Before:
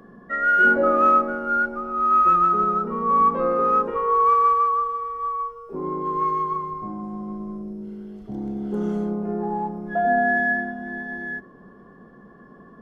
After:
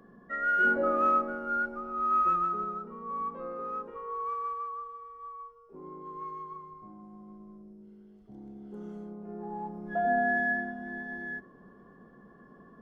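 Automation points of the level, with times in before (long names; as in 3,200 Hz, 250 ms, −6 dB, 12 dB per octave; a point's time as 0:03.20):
0:02.22 −8.5 dB
0:02.97 −17 dB
0:09.15 −17 dB
0:09.93 −7 dB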